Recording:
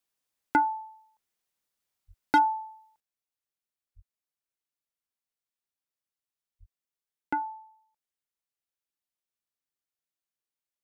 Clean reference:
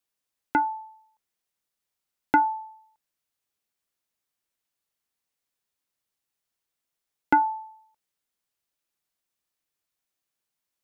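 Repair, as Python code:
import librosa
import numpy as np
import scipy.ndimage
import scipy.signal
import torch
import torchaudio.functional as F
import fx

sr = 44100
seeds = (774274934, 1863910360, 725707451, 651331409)

y = fx.fix_declip(x, sr, threshold_db=-16.0)
y = fx.highpass(y, sr, hz=140.0, slope=24, at=(2.07, 2.19), fade=0.02)
y = fx.highpass(y, sr, hz=140.0, slope=24, at=(3.95, 4.07), fade=0.02)
y = fx.highpass(y, sr, hz=140.0, slope=24, at=(6.59, 6.71), fade=0.02)
y = fx.gain(y, sr, db=fx.steps((0.0, 0.0), (3.0, 10.0)))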